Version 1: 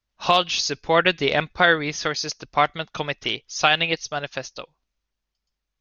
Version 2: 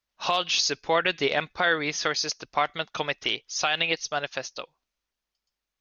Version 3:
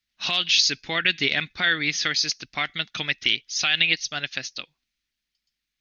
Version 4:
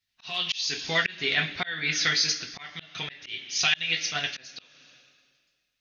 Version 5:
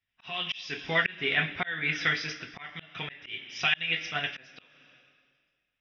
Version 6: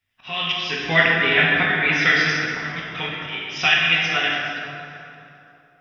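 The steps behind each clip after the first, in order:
bass shelf 200 Hz -11.5 dB; peak limiter -12 dBFS, peak gain reduction 9 dB
ten-band graphic EQ 125 Hz +3 dB, 250 Hz +5 dB, 500 Hz -10 dB, 1 kHz -10 dB, 2 kHz +7 dB, 4 kHz +6 dB
two-slope reverb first 0.21 s, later 1.8 s, from -19 dB, DRR -1 dB; slow attack 343 ms; trim -3 dB
Savitzky-Golay filter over 25 samples
plate-style reverb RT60 2.8 s, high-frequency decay 0.5×, DRR -3.5 dB; trim +6.5 dB

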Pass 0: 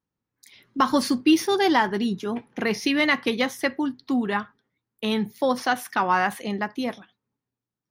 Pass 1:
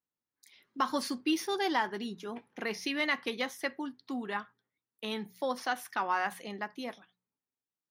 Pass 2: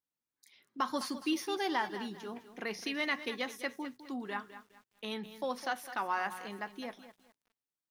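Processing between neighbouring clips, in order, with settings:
bass shelf 220 Hz -11.5 dB; de-hum 60.64 Hz, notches 3; trim -8.5 dB
bit-crushed delay 207 ms, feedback 35%, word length 9-bit, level -12.5 dB; trim -3 dB

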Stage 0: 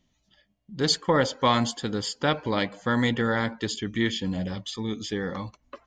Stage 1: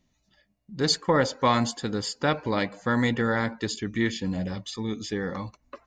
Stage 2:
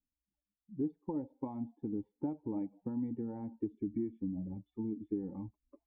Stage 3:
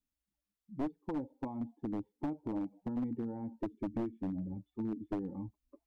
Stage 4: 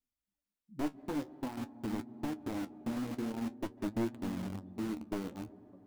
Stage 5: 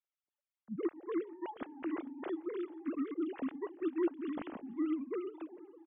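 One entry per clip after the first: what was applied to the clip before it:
band-stop 3.2 kHz, Q 5.9
expander on every frequency bin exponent 1.5; compression 10:1, threshold -34 dBFS, peak gain reduction 16 dB; cascade formant filter u; trim +9 dB
one-sided wavefolder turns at -32 dBFS; trim +1 dB
reverberation RT60 4.3 s, pre-delay 138 ms, DRR 10.5 dB; in parallel at -4.5 dB: bit crusher 6-bit; on the sum: flange 0.48 Hz, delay 7.7 ms, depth 7.1 ms, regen +52%
formants replaced by sine waves; feedback delay 442 ms, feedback 24%, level -21.5 dB

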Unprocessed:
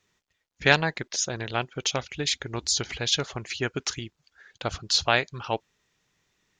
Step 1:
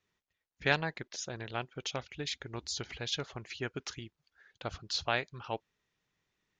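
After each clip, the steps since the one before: distance through air 78 m; trim -8.5 dB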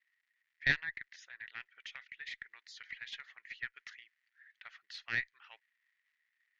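crackle 310 per s -58 dBFS; ladder band-pass 2 kHz, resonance 80%; Chebyshev shaper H 2 -8 dB, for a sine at -19 dBFS; trim +3 dB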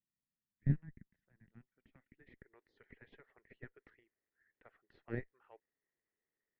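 low-pass sweep 200 Hz -> 420 Hz, 1.64–2.56 s; trim +8.5 dB

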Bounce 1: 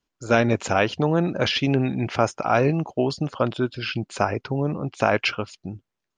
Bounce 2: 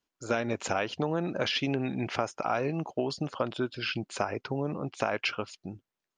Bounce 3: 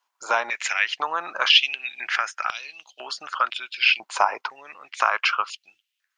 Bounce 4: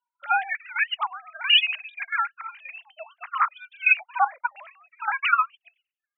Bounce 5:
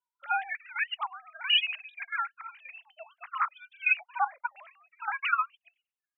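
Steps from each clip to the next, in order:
bass shelf 150 Hz -9.5 dB; compression 5:1, threshold -22 dBFS, peak gain reduction 8 dB; trim -3 dB
step-sequenced high-pass 2 Hz 950–3400 Hz; trim +6.5 dB
formants replaced by sine waves; trance gate "...xxxxx..x.xx.." 198 bpm -12 dB
vibrato 7.4 Hz 28 cents; trim -6.5 dB

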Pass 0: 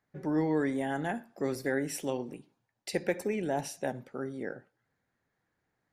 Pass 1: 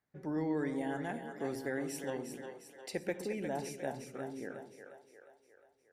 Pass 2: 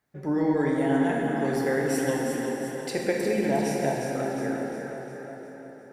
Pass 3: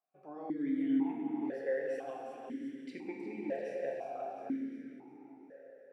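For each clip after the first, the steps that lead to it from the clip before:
two-band feedback delay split 410 Hz, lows 122 ms, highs 356 ms, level -7 dB; trim -6.5 dB
plate-style reverb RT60 4.4 s, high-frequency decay 0.6×, DRR -2 dB; trim +8 dB
stepped vowel filter 2 Hz; trim -3 dB

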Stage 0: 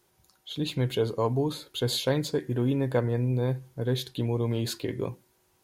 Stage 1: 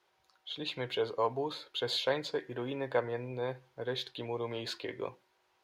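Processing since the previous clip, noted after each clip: three-band isolator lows -18 dB, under 460 Hz, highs -20 dB, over 4.7 kHz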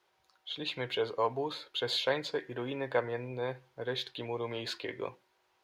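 dynamic bell 2.1 kHz, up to +3 dB, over -50 dBFS, Q 0.94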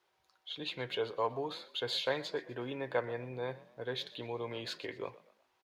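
frequency-shifting echo 123 ms, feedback 41%, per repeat +47 Hz, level -19 dB; trim -3 dB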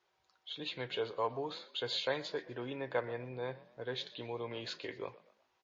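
trim -1 dB; MP3 32 kbps 16 kHz

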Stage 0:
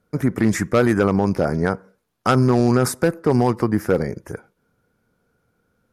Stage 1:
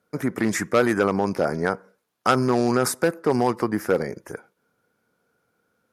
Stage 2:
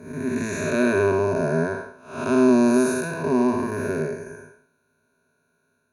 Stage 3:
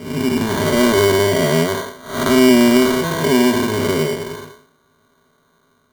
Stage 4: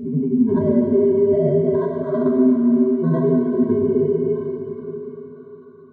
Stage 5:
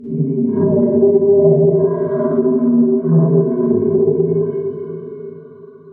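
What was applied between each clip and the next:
high-pass 370 Hz 6 dB/octave
spectral blur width 271 ms; rippled EQ curve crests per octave 1.5, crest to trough 18 dB
in parallel at +1 dB: compression, threshold -27 dBFS, peak gain reduction 13.5 dB; on the sum: sample-and-hold 17×; trim +3.5 dB
spectral contrast enhancement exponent 3.1; compression, threshold -21 dBFS, peak gain reduction 12 dB; plate-style reverb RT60 3.7 s, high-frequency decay 1×, DRR 0 dB; trim +3.5 dB
Schroeder reverb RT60 0.56 s, DRR -9 dB; low-pass that closes with the level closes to 920 Hz, closed at -4 dBFS; loudspeaker Doppler distortion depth 0.12 ms; trim -5.5 dB

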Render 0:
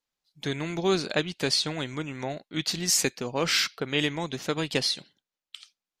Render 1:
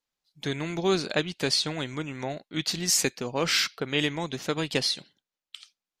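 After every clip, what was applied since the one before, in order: no audible change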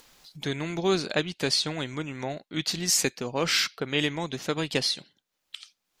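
upward compressor, threshold -34 dBFS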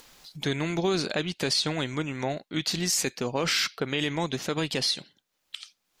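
peak limiter -19 dBFS, peak gain reduction 8 dB; trim +3 dB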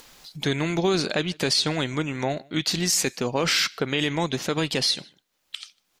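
echo from a far wall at 26 m, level -27 dB; trim +3.5 dB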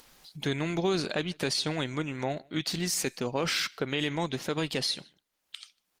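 trim -5 dB; Opus 32 kbps 48 kHz

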